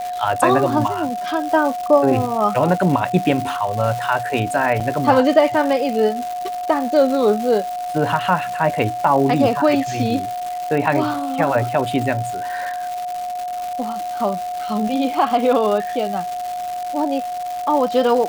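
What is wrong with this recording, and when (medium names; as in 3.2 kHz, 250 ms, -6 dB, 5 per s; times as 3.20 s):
crackle 350 per s -24 dBFS
whine 720 Hz -23 dBFS
4.80–4.81 s: dropout 6.8 ms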